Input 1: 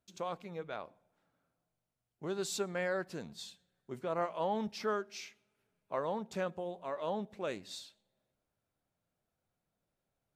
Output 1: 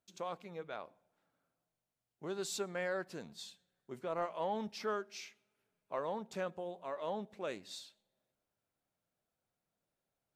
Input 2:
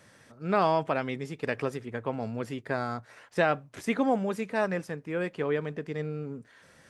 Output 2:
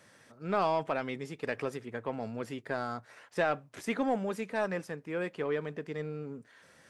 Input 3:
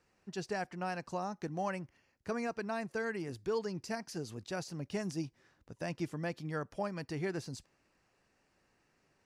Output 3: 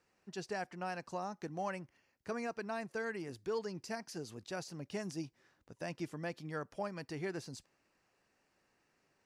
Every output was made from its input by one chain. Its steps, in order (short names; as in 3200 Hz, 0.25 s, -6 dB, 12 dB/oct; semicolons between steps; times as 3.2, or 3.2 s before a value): low shelf 140 Hz -7.5 dB; in parallel at -3 dB: soft clip -25 dBFS; on the sum: gain -6.5 dB